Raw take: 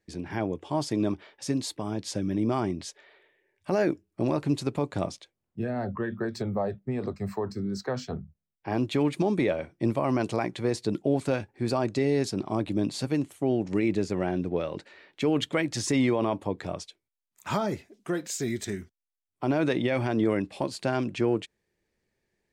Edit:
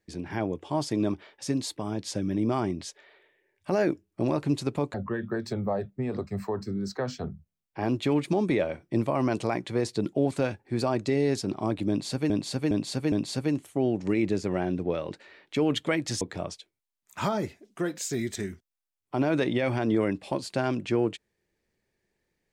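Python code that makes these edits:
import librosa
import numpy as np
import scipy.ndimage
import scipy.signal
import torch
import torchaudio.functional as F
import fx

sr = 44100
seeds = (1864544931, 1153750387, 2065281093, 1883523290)

y = fx.edit(x, sr, fx.cut(start_s=4.94, length_s=0.89),
    fx.repeat(start_s=12.78, length_s=0.41, count=4),
    fx.cut(start_s=15.87, length_s=0.63), tone=tone)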